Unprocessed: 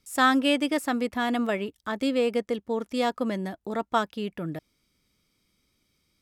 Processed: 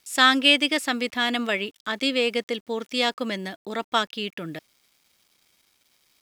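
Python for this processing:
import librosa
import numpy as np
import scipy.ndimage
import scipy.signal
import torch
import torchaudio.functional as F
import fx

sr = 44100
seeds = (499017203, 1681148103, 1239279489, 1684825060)

y = fx.weighting(x, sr, curve='D')
y = fx.quant_dither(y, sr, seeds[0], bits=10, dither='none')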